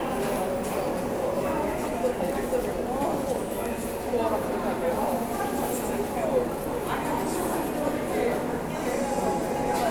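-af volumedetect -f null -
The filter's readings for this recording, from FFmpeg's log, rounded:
mean_volume: -27.3 dB
max_volume: -12.7 dB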